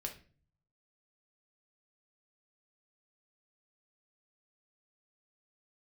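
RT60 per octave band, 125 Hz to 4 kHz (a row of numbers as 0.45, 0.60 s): 1.0, 0.65, 0.45, 0.35, 0.40, 0.35 s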